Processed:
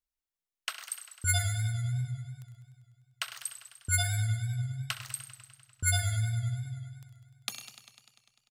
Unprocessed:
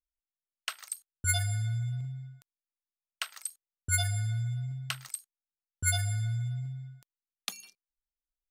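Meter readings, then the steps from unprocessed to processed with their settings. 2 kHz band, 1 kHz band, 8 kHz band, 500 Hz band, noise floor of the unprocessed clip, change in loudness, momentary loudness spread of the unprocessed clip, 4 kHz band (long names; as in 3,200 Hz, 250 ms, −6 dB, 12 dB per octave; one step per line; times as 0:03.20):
+1.0 dB, +1.0 dB, +0.5 dB, +1.0 dB, below −85 dBFS, +0.5 dB, 13 LU, +0.5 dB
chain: repeating echo 65 ms, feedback 59%, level −14 dB
feedback echo with a swinging delay time 99 ms, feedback 73%, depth 84 cents, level −12.5 dB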